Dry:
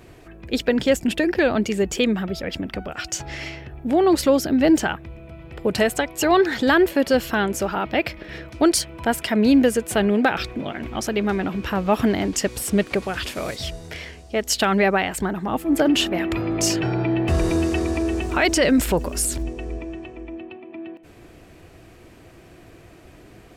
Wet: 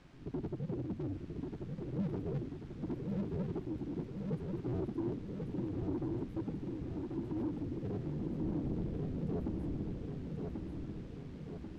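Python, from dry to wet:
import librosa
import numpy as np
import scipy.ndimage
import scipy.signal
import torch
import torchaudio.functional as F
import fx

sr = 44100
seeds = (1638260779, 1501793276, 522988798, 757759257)

y = fx.cycle_switch(x, sr, every=2, mode='inverted')
y = scipy.signal.sosfilt(scipy.signal.cheby2(4, 80, [1300.0, 4100.0], 'bandstop', fs=sr, output='sos'), y)
y = fx.low_shelf(y, sr, hz=81.0, db=-9.0)
y = fx.hum_notches(y, sr, base_hz=50, count=4)
y = fx.quant_dither(y, sr, seeds[0], bits=8, dither='triangular')
y = fx.stretch_grains(y, sr, factor=0.5, grain_ms=22.0)
y = 10.0 ** (-27.0 / 20.0) * np.tanh(y / 10.0 ** (-27.0 / 20.0))
y = fx.spacing_loss(y, sr, db_at_10k=33)
y = fx.echo_feedback(y, sr, ms=1088, feedback_pct=57, wet_db=-4.0)
y = y * 10.0 ** (-4.5 / 20.0)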